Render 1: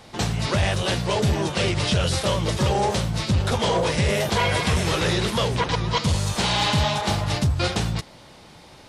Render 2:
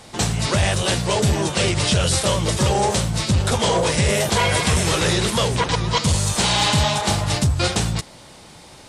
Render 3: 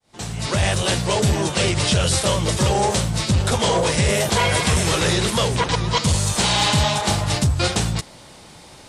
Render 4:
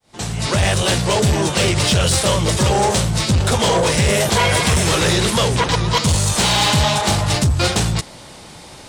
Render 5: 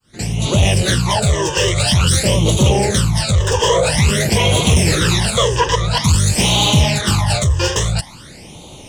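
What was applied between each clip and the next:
peaking EQ 8.4 kHz +9 dB 0.86 oct; trim +2.5 dB
fade-in on the opening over 0.67 s
saturation -14.5 dBFS, distortion -17 dB; trim +5 dB
phase shifter stages 12, 0.49 Hz, lowest notch 220–1700 Hz; trim +3.5 dB

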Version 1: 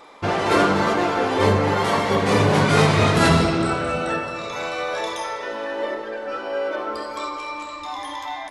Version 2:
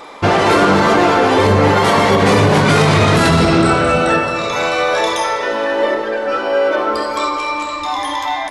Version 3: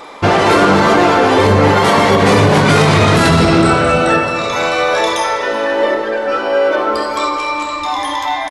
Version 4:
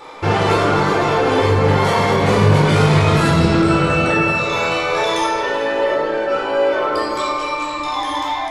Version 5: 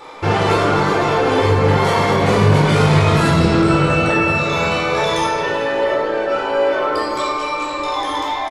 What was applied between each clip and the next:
in parallel at -6 dB: saturation -19.5 dBFS, distortion -9 dB; on the sum: loudness maximiser +10 dB; trim -2.5 dB
delay 380 ms -20.5 dB; trim +1.5 dB
peak limiter -6 dBFS, peak gain reduction 4.5 dB; reverberation RT60 0.65 s, pre-delay 14 ms, DRR -1.5 dB; trim -8 dB
echo from a far wall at 210 m, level -12 dB

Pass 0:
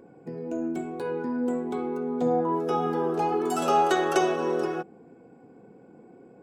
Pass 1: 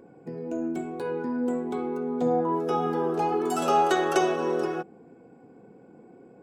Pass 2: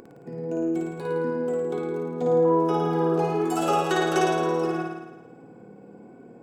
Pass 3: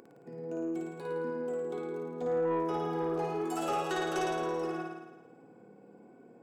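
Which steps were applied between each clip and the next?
no audible change
upward compressor, threshold -42 dBFS; on a send: flutter echo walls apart 9.4 m, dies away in 1.1 s; on the sum: trim -1.5 dB
bass shelf 120 Hz -11.5 dB; saturation -17 dBFS, distortion -18 dB; trim -7 dB

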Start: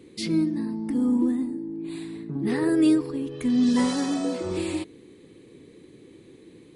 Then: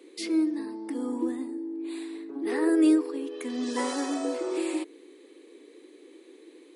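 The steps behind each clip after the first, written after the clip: steep high-pass 290 Hz 48 dB/octave; dynamic bell 3.9 kHz, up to -5 dB, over -48 dBFS, Q 1.2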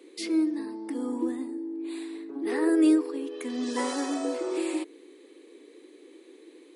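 no audible change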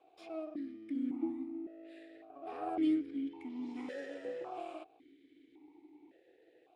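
comb filter that takes the minimum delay 0.57 ms; stepped vowel filter 1.8 Hz

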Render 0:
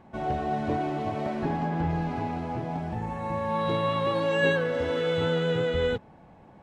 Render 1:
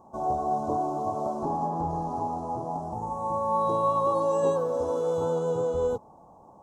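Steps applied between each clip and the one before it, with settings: FFT filter 170 Hz 0 dB, 1.1 kHz +12 dB, 1.9 kHz -28 dB, 4.4 kHz -4 dB, 6.2 kHz +12 dB; trim -6.5 dB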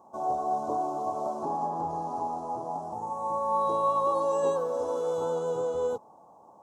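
high-pass 420 Hz 6 dB/octave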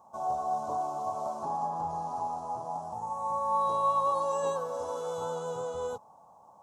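peaking EQ 340 Hz -13.5 dB 1.3 oct; trim +1.5 dB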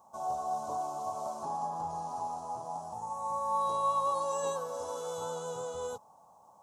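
treble shelf 3.4 kHz +9 dB; trim -3.5 dB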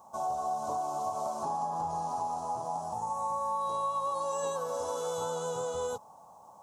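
compression, threshold -35 dBFS, peak gain reduction 9 dB; trim +5.5 dB

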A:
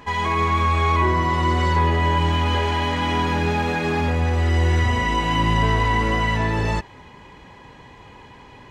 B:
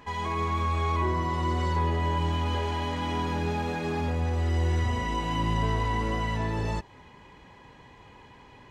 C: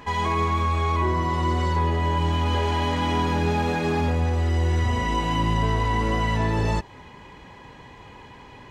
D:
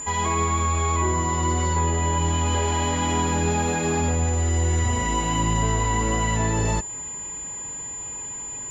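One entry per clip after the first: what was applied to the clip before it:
dynamic bell 2 kHz, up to -5 dB, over -38 dBFS, Q 0.92; trim -7 dB
gain riding 0.5 s; trim +5 dB
whistle 7.1 kHz -31 dBFS

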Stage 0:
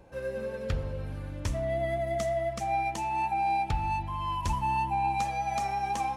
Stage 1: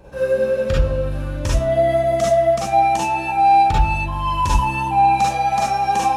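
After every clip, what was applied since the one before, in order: band-stop 2.1 kHz, Q 19; reverberation, pre-delay 36 ms, DRR -4.5 dB; trim +7 dB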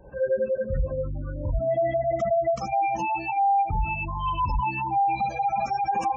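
reverb removal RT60 0.65 s; peak limiter -12 dBFS, peak gain reduction 6.5 dB; spectral gate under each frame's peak -20 dB strong; trim -4.5 dB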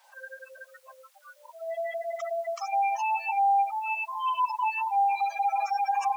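word length cut 10-bit, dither none; steep high-pass 750 Hz 48 dB/octave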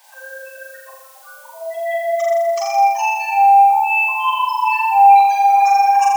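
treble shelf 5.6 kHz +9.5 dB; band-stop 1.3 kHz, Q 6; on a send: flutter echo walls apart 7.1 m, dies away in 1.1 s; on the sum: trim +7.5 dB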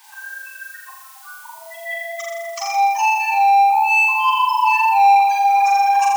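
in parallel at -0.5 dB: saturation -15 dBFS, distortion -9 dB; on the sum: elliptic high-pass 840 Hz, stop band 50 dB; trim -2.5 dB

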